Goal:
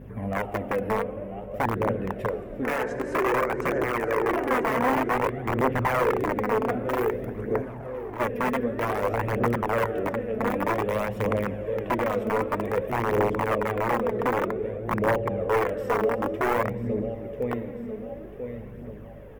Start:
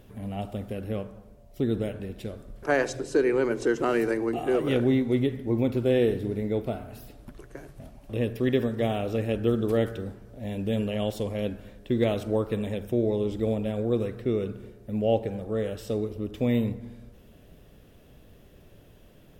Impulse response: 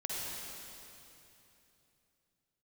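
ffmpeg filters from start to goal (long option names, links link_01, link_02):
-filter_complex "[0:a]adynamicequalizer=threshold=0.0158:dfrequency=760:dqfactor=0.83:tfrequency=760:tqfactor=0.83:attack=5:release=100:ratio=0.375:range=2:mode=cutabove:tftype=bell,aecho=1:1:992|1984|2976|3968:0.251|0.108|0.0464|0.02,alimiter=limit=-23.5dB:level=0:latency=1:release=335,asplit=2[link_01][link_02];[1:a]atrim=start_sample=2205,adelay=16[link_03];[link_02][link_03]afir=irnorm=-1:irlink=0,volume=-10.5dB[link_04];[link_01][link_04]amix=inputs=2:normalize=0,aeval=exprs='(mod(18.8*val(0)+1,2)-1)/18.8':channel_layout=same,aeval=exprs='val(0)+0.00447*(sin(2*PI*50*n/s)+sin(2*PI*2*50*n/s)/2+sin(2*PI*3*50*n/s)/3+sin(2*PI*4*50*n/s)/4+sin(2*PI*5*50*n/s)/5)':channel_layout=same,asplit=3[link_05][link_06][link_07];[link_05]afade=type=out:start_time=7.61:duration=0.02[link_08];[link_06]asoftclip=type=hard:threshold=-40dB,afade=type=in:start_time=7.61:duration=0.02,afade=type=out:start_time=8.19:duration=0.02[link_09];[link_07]afade=type=in:start_time=8.19:duration=0.02[link_10];[link_08][link_09][link_10]amix=inputs=3:normalize=0,aphaser=in_gain=1:out_gain=1:delay=4.7:decay=0.42:speed=0.53:type=triangular,equalizer=frequency=125:width_type=o:width=1:gain=6,equalizer=frequency=250:width_type=o:width=1:gain=5,equalizer=frequency=500:width_type=o:width=1:gain=11,equalizer=frequency=1000:width_type=o:width=1:gain=10,equalizer=frequency=2000:width_type=o:width=1:gain=11,equalizer=frequency=4000:width_type=o:width=1:gain=-11,equalizer=frequency=8000:width_type=o:width=1:gain=-5,volume=-4dB"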